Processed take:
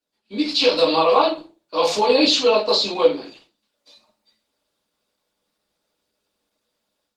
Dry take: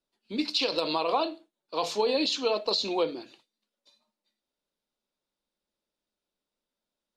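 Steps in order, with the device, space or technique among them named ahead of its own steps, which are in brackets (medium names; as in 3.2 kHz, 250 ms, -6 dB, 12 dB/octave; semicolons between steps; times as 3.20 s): 1.32–2.49 s: bass shelf 80 Hz -3.5 dB; far-field microphone of a smart speaker (reverberation RT60 0.35 s, pre-delay 3 ms, DRR -6.5 dB; high-pass 110 Hz 6 dB/octave; level rider gain up to 10 dB; trim -2.5 dB; Opus 16 kbps 48 kHz)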